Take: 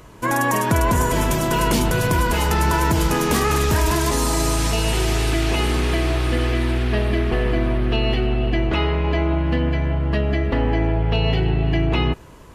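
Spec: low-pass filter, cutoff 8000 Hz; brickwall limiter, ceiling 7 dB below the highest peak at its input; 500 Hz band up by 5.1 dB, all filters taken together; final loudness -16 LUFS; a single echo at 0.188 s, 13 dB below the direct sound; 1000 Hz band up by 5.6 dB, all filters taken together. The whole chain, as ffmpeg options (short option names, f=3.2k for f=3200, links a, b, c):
-af "lowpass=8k,equalizer=f=500:t=o:g=5.5,equalizer=f=1k:t=o:g=5,alimiter=limit=-11dB:level=0:latency=1,aecho=1:1:188:0.224,volume=4dB"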